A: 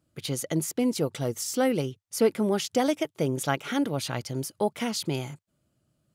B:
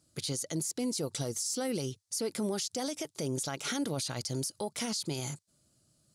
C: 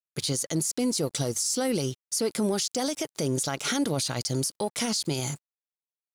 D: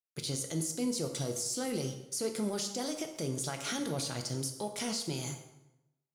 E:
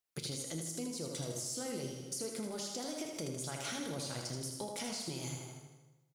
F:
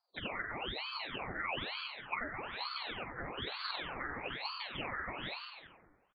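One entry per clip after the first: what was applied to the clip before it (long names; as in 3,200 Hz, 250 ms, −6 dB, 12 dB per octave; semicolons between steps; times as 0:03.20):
flat-topped bell 6,500 Hz +13 dB; downward compressor, threshold −25 dBFS, peak gain reduction 9.5 dB; brickwall limiter −25 dBFS, peak gain reduction 11.5 dB
dead-zone distortion −56.5 dBFS; level +7 dB
dense smooth reverb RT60 0.93 s, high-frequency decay 0.75×, DRR 4.5 dB; level −8.5 dB
downward compressor 6 to 1, threshold −44 dBFS, peak gain reduction 14.5 dB; repeating echo 79 ms, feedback 55%, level −6 dB; level +5 dB
hearing-aid frequency compression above 1,000 Hz 4 to 1; echo with shifted repeats 101 ms, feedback 63%, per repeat −120 Hz, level −16.5 dB; ring modulator whose carrier an LFO sweeps 1,500 Hz, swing 90%, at 1.1 Hz; level −1 dB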